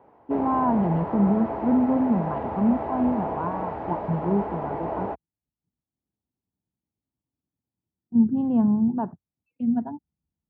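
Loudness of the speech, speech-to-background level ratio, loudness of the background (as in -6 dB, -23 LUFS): -24.5 LUFS, 7.0 dB, -31.5 LUFS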